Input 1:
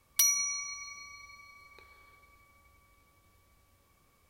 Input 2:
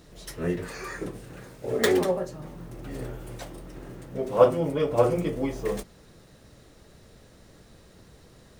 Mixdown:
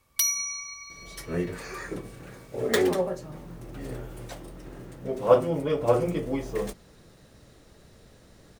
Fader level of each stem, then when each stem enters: +1.0 dB, -1.0 dB; 0.00 s, 0.90 s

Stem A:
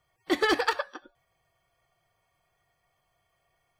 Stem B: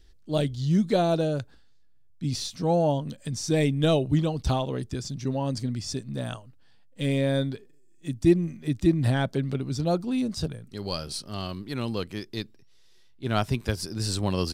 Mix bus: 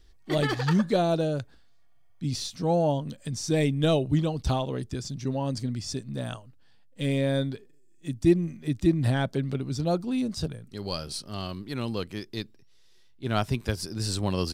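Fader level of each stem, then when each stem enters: -5.5 dB, -1.0 dB; 0.00 s, 0.00 s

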